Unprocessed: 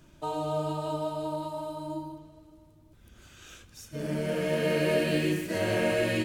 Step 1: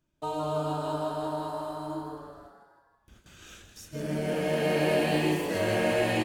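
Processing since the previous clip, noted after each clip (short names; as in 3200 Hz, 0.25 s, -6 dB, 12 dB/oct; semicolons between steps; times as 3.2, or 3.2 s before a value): gate with hold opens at -43 dBFS; on a send: frequency-shifting echo 0.161 s, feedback 53%, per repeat +130 Hz, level -9 dB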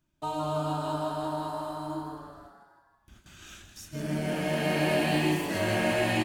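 bell 480 Hz -12 dB 0.35 oct; gain +1.5 dB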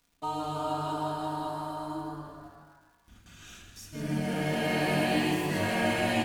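crackle 310/s -54 dBFS; reverb RT60 1.1 s, pre-delay 4 ms, DRR 2.5 dB; gain -2.5 dB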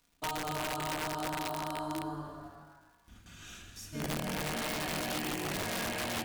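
compressor 16:1, threshold -31 dBFS, peak gain reduction 9.5 dB; wrapped overs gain 28.5 dB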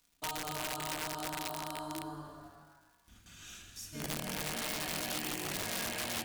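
high shelf 2800 Hz +7.5 dB; gain -5 dB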